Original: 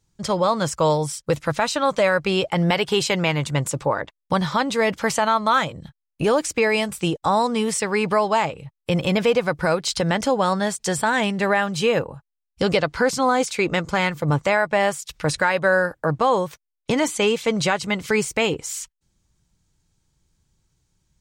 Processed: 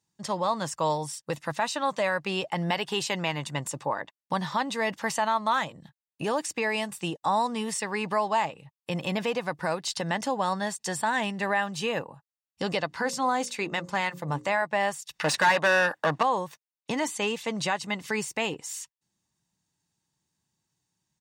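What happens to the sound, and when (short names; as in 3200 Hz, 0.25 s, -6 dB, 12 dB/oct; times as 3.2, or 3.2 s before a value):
12.87–14.62 notches 60/120/180/240/300/360/420/480/540 Hz
15.19–16.23 overdrive pedal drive 21 dB, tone 3800 Hz, clips at -7 dBFS
whole clip: HPF 200 Hz 12 dB/oct; comb 1.1 ms, depth 39%; gain -7 dB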